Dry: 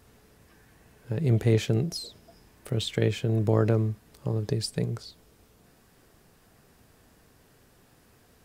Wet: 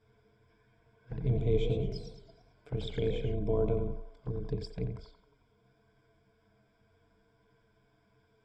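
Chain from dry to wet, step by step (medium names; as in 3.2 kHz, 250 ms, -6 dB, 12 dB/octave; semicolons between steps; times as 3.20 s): octave divider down 2 oct, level -4 dB; rippled EQ curve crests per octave 1.7, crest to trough 14 dB; touch-sensitive flanger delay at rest 9.7 ms, full sweep at -20 dBFS; distance through air 160 m; band-passed feedback delay 89 ms, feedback 62%, band-pass 1 kHz, level -5.5 dB; 1.17–3.35 s: modulated delay 112 ms, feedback 45%, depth 174 cents, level -9 dB; trim -8.5 dB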